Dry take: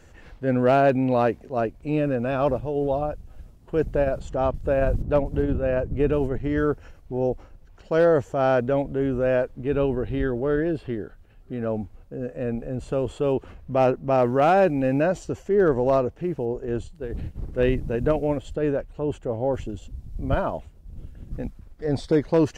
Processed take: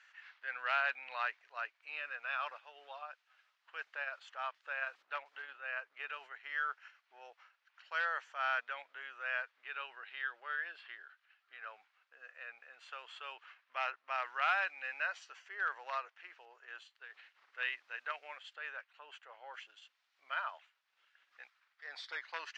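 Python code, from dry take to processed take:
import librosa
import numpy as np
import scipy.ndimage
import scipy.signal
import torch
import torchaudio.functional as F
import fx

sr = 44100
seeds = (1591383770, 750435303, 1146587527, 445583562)

y = scipy.signal.sosfilt(scipy.signal.butter(4, 1400.0, 'highpass', fs=sr, output='sos'), x)
y = fx.air_absorb(y, sr, metres=230.0)
y = F.gain(torch.from_numpy(y), 1.5).numpy()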